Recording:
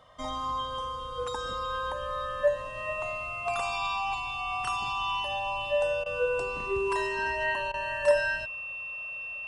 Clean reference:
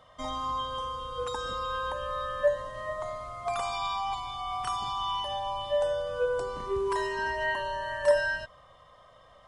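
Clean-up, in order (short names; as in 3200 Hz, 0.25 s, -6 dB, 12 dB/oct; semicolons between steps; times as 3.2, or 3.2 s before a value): notch 2700 Hz, Q 30; interpolate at 6.04/7.72, 18 ms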